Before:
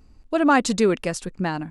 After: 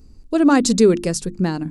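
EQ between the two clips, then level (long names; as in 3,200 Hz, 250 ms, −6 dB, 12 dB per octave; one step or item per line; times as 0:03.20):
flat-topped bell 1,400 Hz −9.5 dB 2.8 octaves
mains-hum notches 50/100/150/200/250/300/350 Hz
+7.0 dB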